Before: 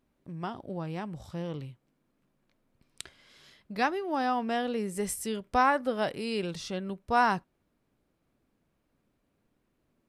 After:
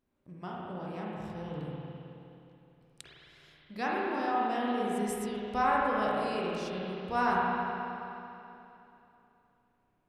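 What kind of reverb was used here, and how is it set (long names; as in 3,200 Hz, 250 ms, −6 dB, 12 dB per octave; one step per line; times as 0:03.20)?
spring reverb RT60 3 s, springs 33/53 ms, chirp 70 ms, DRR −5.5 dB
level −8 dB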